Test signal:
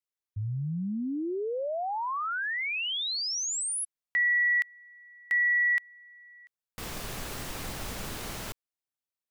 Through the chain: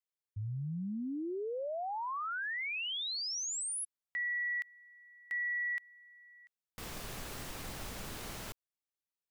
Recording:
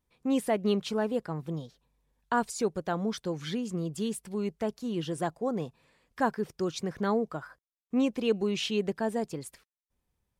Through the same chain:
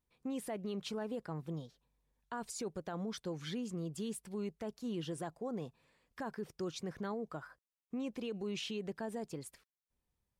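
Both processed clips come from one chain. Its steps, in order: limiter -26 dBFS; gain -6 dB

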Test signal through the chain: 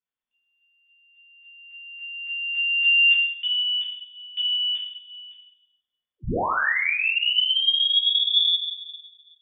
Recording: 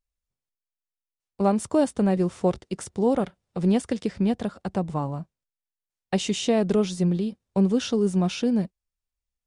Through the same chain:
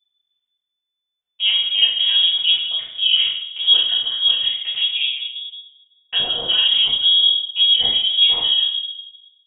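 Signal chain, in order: shoebox room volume 190 m³, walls mixed, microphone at 2.3 m; inverted band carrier 3500 Hz; gain -4.5 dB

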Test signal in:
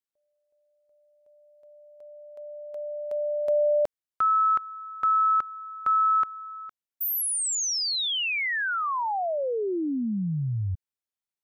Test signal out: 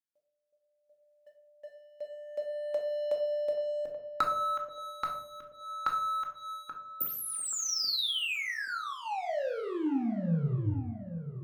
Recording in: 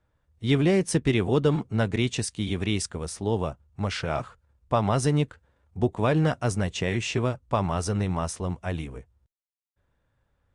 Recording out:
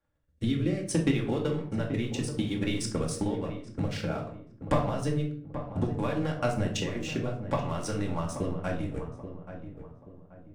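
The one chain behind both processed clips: low shelf 110 Hz -9.5 dB; compressor 4:1, threshold -41 dBFS; transient shaper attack +11 dB, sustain -5 dB; sample leveller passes 2; rotary speaker horn 0.6 Hz; darkening echo 0.831 s, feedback 39%, low-pass 1300 Hz, level -10 dB; shoebox room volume 650 m³, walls furnished, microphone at 2.3 m; gain -1.5 dB

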